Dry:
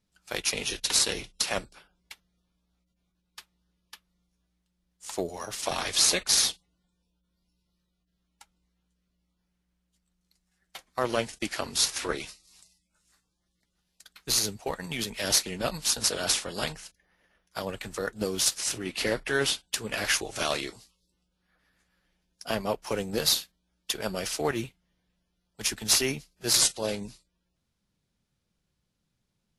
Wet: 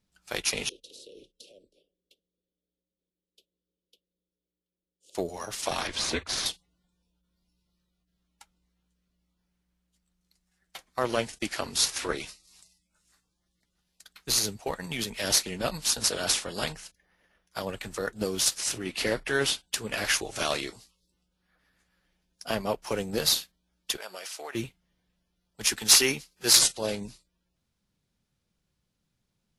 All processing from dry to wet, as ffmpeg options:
ffmpeg -i in.wav -filter_complex "[0:a]asettb=1/sr,asplit=3[link_01][link_02][link_03];[link_01]atrim=end=0.694[link_04];[link_02]atrim=start=0.69:end=5.15,asetpts=PTS-STARTPTS,afade=type=in:duration=0.004:curve=qsin,afade=type=out:start_time=4.456:duration=0.004:curve=qsin,acrossover=split=320 2300:gain=0.0891 1 0.1[link_05][link_06][link_07];[link_05][link_06][link_07]amix=inputs=3:normalize=0,acompressor=threshold=-42dB:ratio=8:attack=3.2:release=140:knee=1:detection=peak,asuperstop=centerf=1300:order=12:qfactor=0.52[link_08];[link_03]atrim=start=5.146[link_09];[link_04][link_08]acrossfade=duration=0.004:curve1=hsin:curve2=qsin[link_10];[link_10][link_09]acrossfade=duration=0.004:curve1=qsin:curve2=hsin,asettb=1/sr,asplit=3[link_11][link_12][link_13];[link_11]atrim=end=5.874[link_14];[link_12]atrim=start=5.87:end=6.46,asetpts=PTS-STARTPTS,afade=type=in:duration=0.004:curve=qsin,afade=type=out:start_time=0.586:duration=0.004:curve=qsin,aemphasis=mode=reproduction:type=75kf,afreqshift=-110[link_15];[link_13]atrim=start=6.456[link_16];[link_14][link_15]acrossfade=duration=0.004:curve1=hsin:curve2=qsin[link_17];[link_17][link_16]acrossfade=duration=0.004:curve1=qsin:curve2=hsin,asettb=1/sr,asplit=3[link_18][link_19][link_20];[link_18]atrim=end=23.974[link_21];[link_19]atrim=start=23.97:end=24.55,asetpts=PTS-STARTPTS,afade=type=in:duration=0.004:curve=qsin,afade=type=out:start_time=0.576:duration=0.004:curve=qsin,highpass=670,acompressor=threshold=-37dB:ratio=3:attack=3.2:release=140:knee=1:detection=peak[link_22];[link_20]atrim=start=24.546[link_23];[link_21][link_22]acrossfade=duration=0.004:curve1=hsin:curve2=qsin[link_24];[link_24][link_23]acrossfade=duration=0.004:curve1=qsin:curve2=hsin,asettb=1/sr,asplit=3[link_25][link_26][link_27];[link_25]atrim=end=25.674[link_28];[link_26]atrim=start=25.67:end=26.59,asetpts=PTS-STARTPTS,afade=type=in:duration=0.004:curve=qsin,afade=type=out:start_time=0.916:duration=0.004:curve=qsin,lowshelf=frequency=260:gain=-10.5,bandreject=frequency=640:width=5.5,acontrast=34[link_29];[link_27]atrim=start=26.586[link_30];[link_28][link_29]acrossfade=duration=0.004:curve1=hsin:curve2=qsin[link_31];[link_31][link_30]acrossfade=duration=0.004:curve1=qsin:curve2=hsin" out.wav

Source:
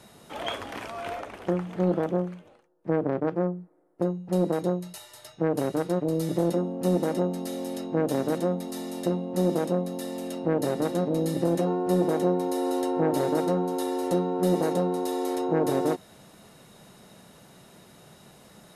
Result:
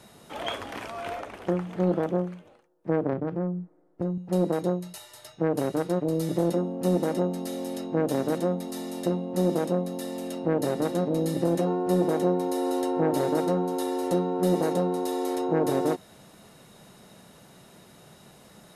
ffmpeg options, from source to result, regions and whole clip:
ffmpeg -i in.wav -filter_complex "[0:a]asettb=1/sr,asplit=3[link_01][link_02][link_03];[link_01]atrim=end=3.134[link_04];[link_02]atrim=start=3.13:end=4.18,asetpts=PTS-STARTPTS,afade=type=in:duration=0.004:curve=qsin,afade=type=out:start_time=1.046:duration=0.004:curve=qsin,lowpass=9300,bass=frequency=250:gain=8,treble=frequency=4000:gain=-3,acompressor=threshold=-27dB:ratio=2.5:attack=3.2:release=140:knee=1:detection=peak[link_05];[link_03]atrim=start=4.176[link_06];[link_04][link_05]acrossfade=duration=0.004:curve1=hsin:curve2=qsin[link_07];[link_07][link_06]acrossfade=duration=0.004:curve1=qsin:curve2=hsin" out.wav

